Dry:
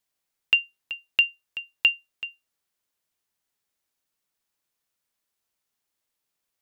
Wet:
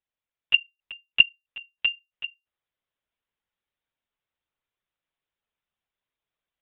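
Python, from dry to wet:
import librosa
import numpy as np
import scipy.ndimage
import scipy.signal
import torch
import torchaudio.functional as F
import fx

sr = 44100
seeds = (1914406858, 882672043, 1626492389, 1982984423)

y = fx.rider(x, sr, range_db=4, speed_s=2.0)
y = fx.lpc_monotone(y, sr, seeds[0], pitch_hz=130.0, order=16)
y = F.gain(torch.from_numpy(y), -6.5).numpy()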